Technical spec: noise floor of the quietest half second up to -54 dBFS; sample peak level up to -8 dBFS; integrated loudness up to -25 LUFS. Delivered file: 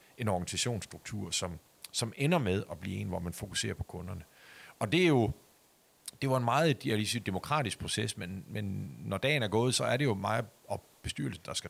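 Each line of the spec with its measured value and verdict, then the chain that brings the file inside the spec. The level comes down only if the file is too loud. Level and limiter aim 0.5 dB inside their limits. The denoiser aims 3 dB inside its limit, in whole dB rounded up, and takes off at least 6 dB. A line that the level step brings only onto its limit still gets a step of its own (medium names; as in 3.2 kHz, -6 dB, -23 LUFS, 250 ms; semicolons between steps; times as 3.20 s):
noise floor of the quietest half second -66 dBFS: pass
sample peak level -15.0 dBFS: pass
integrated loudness -32.5 LUFS: pass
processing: none needed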